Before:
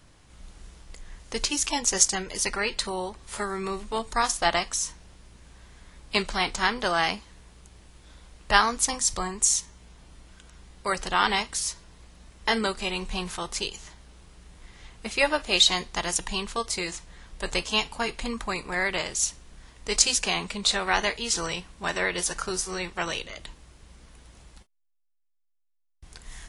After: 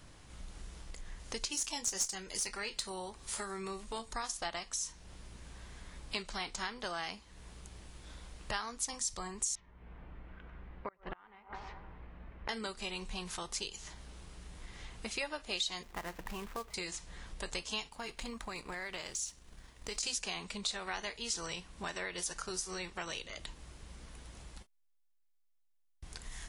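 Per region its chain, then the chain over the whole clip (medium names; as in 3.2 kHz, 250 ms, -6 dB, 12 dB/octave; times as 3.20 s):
1.52–4.08 s: treble shelf 5.1 kHz +7 dB + valve stage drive 10 dB, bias 0.35 + doubling 26 ms -13.5 dB
9.55–12.49 s: low-pass 2.3 kHz 24 dB/octave + feedback echo behind a band-pass 102 ms, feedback 48%, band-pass 590 Hz, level -10 dB + inverted gate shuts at -18 dBFS, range -31 dB
15.83–16.74 s: low-pass 2.2 kHz 24 dB/octave + companded quantiser 4-bit
17.89–20.03 s: companding laws mixed up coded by A + compression 2.5:1, threshold -30 dBFS
whole clip: compression 3:1, threshold -42 dBFS; dynamic bell 6 kHz, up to +4 dB, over -52 dBFS, Q 0.76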